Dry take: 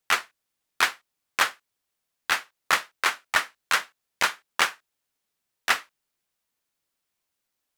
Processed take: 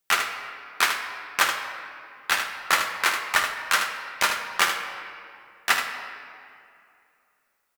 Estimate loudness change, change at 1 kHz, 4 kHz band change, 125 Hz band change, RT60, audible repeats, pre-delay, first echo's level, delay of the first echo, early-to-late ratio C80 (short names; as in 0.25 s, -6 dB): +1.5 dB, +2.5 dB, +2.0 dB, n/a, 2.5 s, 1, 5 ms, -8.0 dB, 77 ms, 7.5 dB